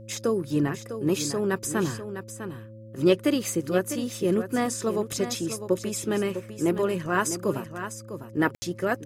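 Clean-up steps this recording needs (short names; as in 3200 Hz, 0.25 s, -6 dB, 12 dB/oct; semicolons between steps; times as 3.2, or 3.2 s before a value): de-hum 110.2 Hz, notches 3; notch 540 Hz, Q 30; room tone fill 8.55–8.62; inverse comb 0.652 s -10 dB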